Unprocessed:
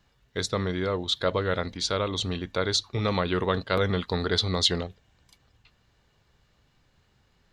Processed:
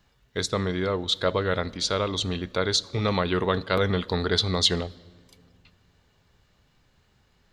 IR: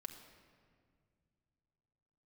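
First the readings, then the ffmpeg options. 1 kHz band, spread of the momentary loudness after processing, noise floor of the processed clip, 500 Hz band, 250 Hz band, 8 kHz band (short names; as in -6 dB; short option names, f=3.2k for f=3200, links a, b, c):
+1.5 dB, 6 LU, -65 dBFS, +1.5 dB, +1.5 dB, +2.0 dB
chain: -filter_complex "[0:a]asplit=2[a][b];[1:a]atrim=start_sample=2205,highshelf=f=7.8k:g=11[c];[b][c]afir=irnorm=-1:irlink=0,volume=-9.5dB[d];[a][d]amix=inputs=2:normalize=0"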